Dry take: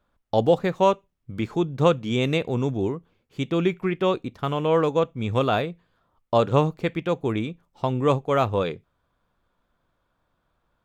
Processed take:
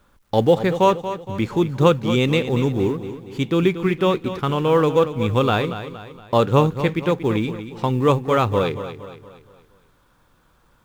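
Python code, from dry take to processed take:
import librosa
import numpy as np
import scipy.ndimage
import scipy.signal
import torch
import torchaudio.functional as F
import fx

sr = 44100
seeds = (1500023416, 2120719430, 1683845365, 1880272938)

y = fx.law_mismatch(x, sr, coded='mu')
y = fx.peak_eq(y, sr, hz=660.0, db=-9.0, octaves=0.24)
y = fx.echo_feedback(y, sr, ms=233, feedback_pct=45, wet_db=-11.5)
y = F.gain(torch.from_numpy(y), 4.0).numpy()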